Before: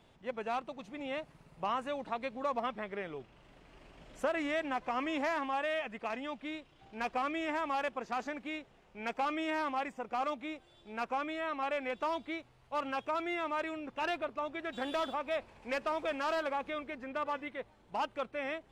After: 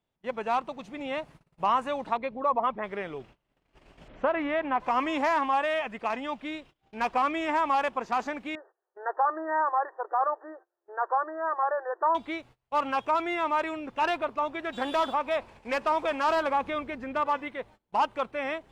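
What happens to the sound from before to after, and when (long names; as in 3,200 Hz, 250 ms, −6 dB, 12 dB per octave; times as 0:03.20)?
0:02.17–0:02.84: spectral envelope exaggerated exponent 1.5
0:04.08–0:04.80: Bessel low-pass filter 2,400 Hz, order 4
0:08.55–0:12.15: linear-phase brick-wall band-pass 320–1,900 Hz
0:16.28–0:17.21: parametric band 80 Hz +7 dB 2.7 octaves
whole clip: noise gate −55 dBFS, range −25 dB; dynamic equaliser 980 Hz, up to +7 dB, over −49 dBFS, Q 2.4; level +5 dB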